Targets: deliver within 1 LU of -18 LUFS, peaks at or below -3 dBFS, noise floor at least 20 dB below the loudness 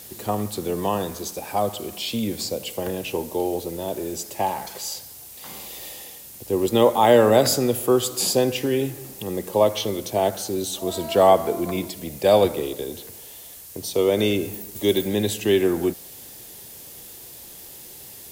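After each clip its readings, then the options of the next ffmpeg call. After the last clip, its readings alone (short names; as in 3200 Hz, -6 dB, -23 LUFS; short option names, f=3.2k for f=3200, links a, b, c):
noise floor -42 dBFS; noise floor target -43 dBFS; loudness -22.5 LUFS; peak -3.5 dBFS; loudness target -18.0 LUFS
-> -af "afftdn=nr=6:nf=-42"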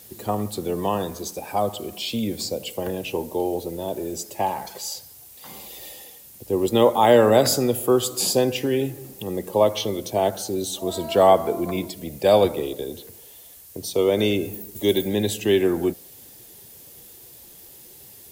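noise floor -46 dBFS; loudness -22.5 LUFS; peak -3.5 dBFS; loudness target -18.0 LUFS
-> -af "volume=4.5dB,alimiter=limit=-3dB:level=0:latency=1"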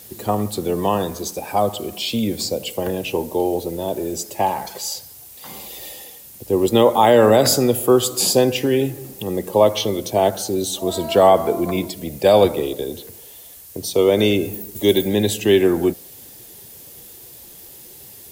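loudness -18.5 LUFS; peak -3.0 dBFS; noise floor -42 dBFS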